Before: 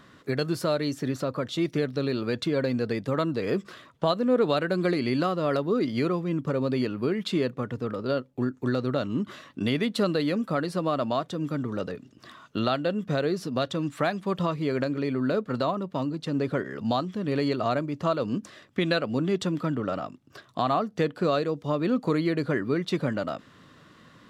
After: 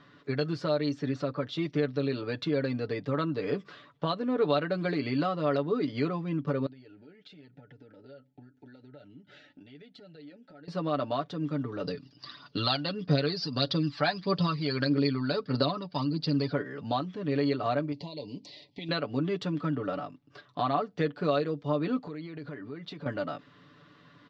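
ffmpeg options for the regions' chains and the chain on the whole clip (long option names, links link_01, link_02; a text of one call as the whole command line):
ffmpeg -i in.wav -filter_complex "[0:a]asettb=1/sr,asplit=3[link_01][link_02][link_03];[link_01]atrim=end=6.664[link_04];[link_02]atrim=start=6.66:end=10.68,asetpts=PTS-STARTPTS,afade=type=in:duration=0.004:curve=qsin,afade=type=out:start_time=4.016:duration=0.004:curve=qsin,acompressor=threshold=-40dB:ratio=8:attack=3.2:release=140:knee=1:detection=peak,flanger=delay=0.9:depth=2.7:regen=-49:speed=1.2:shape=sinusoidal,asuperstop=centerf=1100:order=12:qfactor=3.1[link_05];[link_03]atrim=start=10.676[link_06];[link_04][link_05]acrossfade=duration=0.004:curve1=hsin:curve2=qsin[link_07];[link_07][link_06]acrossfade=duration=0.004:curve1=qsin:curve2=hsin,asettb=1/sr,asplit=3[link_08][link_09][link_10];[link_08]atrim=end=11.844[link_11];[link_09]atrim=start=11.84:end=16.53,asetpts=PTS-STARTPTS,afade=type=in:duration=0.004:curve=qsin,afade=type=out:start_time=4.686:duration=0.004:curve=qsin,aphaser=in_gain=1:out_gain=1:delay=1.4:decay=0.5:speed=1.6:type=triangular,lowpass=frequency=4800:width_type=q:width=9.8[link_12];[link_10]atrim=start=16.526[link_13];[link_11][link_12]acrossfade=duration=0.004:curve1=hsin:curve2=qsin[link_14];[link_14][link_13]acrossfade=duration=0.004:curve1=qsin:curve2=hsin,asettb=1/sr,asplit=3[link_15][link_16][link_17];[link_15]atrim=end=17.924[link_18];[link_16]atrim=start=17.92:end=18.89,asetpts=PTS-STARTPTS,afade=type=in:duration=0.004:curve=qsin,afade=type=out:start_time=0.966:duration=0.004:curve=qsin,equalizer=frequency=4400:width_type=o:width=0.53:gain=14.5,acompressor=threshold=-33dB:ratio=3:attack=3.2:release=140:knee=1:detection=peak,asuperstop=centerf=1400:order=12:qfactor=1.5[link_19];[link_17]atrim=start=18.886[link_20];[link_18][link_19]acrossfade=duration=0.004:curve1=hsin:curve2=qsin[link_21];[link_21][link_20]acrossfade=duration=0.004:curve1=qsin:curve2=hsin,asettb=1/sr,asplit=3[link_22][link_23][link_24];[link_22]atrim=end=21.984[link_25];[link_23]atrim=start=21.98:end=23.06,asetpts=PTS-STARTPTS,afade=type=in:duration=0.004:curve=qsin,afade=type=out:start_time=1.076:duration=0.004:curve=qsin,lowpass=9300,acompressor=threshold=-33dB:ratio=8:attack=3.2:release=140:knee=1:detection=peak[link_26];[link_24]atrim=start=23.056[link_27];[link_25][link_26]acrossfade=duration=0.004:curve1=hsin:curve2=qsin[link_28];[link_28][link_27]acrossfade=duration=0.004:curve1=qsin:curve2=hsin,lowpass=frequency=5100:width=0.5412,lowpass=frequency=5100:width=1.3066,lowshelf=frequency=62:gain=-6.5,aecho=1:1:6.9:0.67,volume=-5dB" out.wav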